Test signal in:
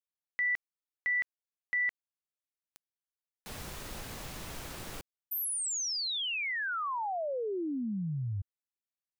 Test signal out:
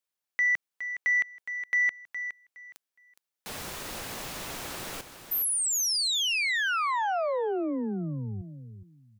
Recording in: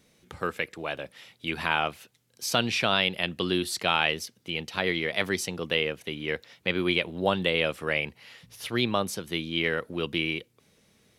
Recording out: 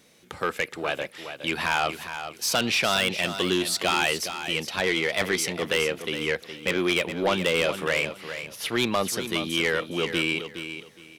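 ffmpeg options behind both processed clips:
-filter_complex "[0:a]lowshelf=f=150:g=-12,asoftclip=type=tanh:threshold=-23dB,asplit=2[a][b];[b]aecho=0:1:415|830|1245:0.316|0.0696|0.0153[c];[a][c]amix=inputs=2:normalize=0,volume=6.5dB"

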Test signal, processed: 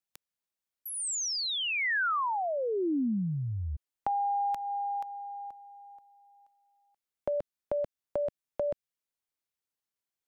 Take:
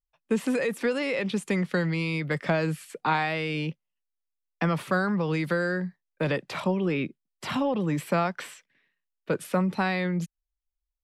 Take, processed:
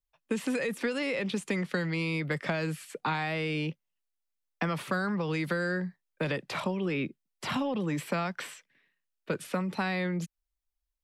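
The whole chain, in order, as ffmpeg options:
-filter_complex "[0:a]acrossover=split=260|1600|7500[a][b][c][d];[a]acompressor=threshold=-34dB:ratio=4[e];[b]acompressor=threshold=-32dB:ratio=4[f];[c]acompressor=threshold=-34dB:ratio=4[g];[d]acompressor=threshold=-49dB:ratio=4[h];[e][f][g][h]amix=inputs=4:normalize=0"

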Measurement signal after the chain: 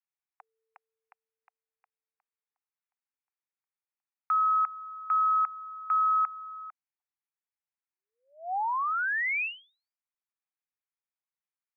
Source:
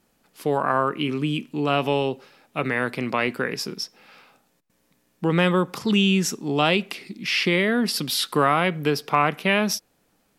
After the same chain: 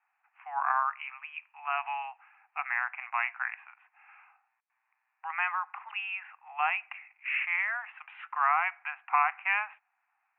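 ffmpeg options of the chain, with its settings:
-af "asuperpass=centerf=1400:order=20:qfactor=0.74,volume=-4dB"

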